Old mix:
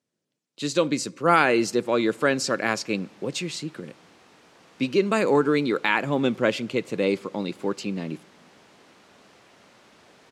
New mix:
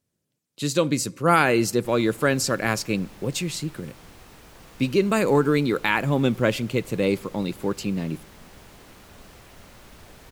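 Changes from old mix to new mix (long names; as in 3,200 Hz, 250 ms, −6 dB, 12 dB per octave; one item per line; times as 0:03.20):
background +4.0 dB
master: remove band-pass filter 210–6,700 Hz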